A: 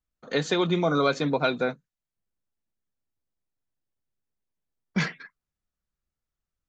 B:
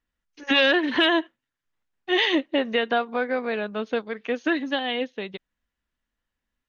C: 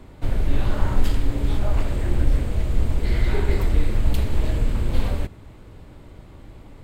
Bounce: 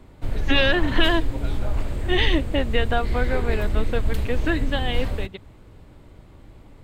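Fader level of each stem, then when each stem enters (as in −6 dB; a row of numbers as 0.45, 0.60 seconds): −17.0, −1.0, −3.5 decibels; 0.00, 0.00, 0.00 seconds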